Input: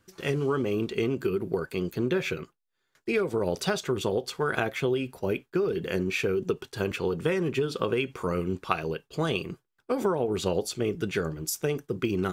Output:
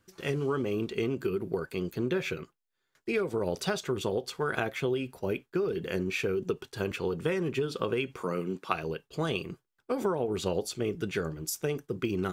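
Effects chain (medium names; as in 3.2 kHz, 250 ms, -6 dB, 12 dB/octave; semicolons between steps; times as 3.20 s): 8.22–8.72 s: high-pass 150 Hz 24 dB/octave; trim -3 dB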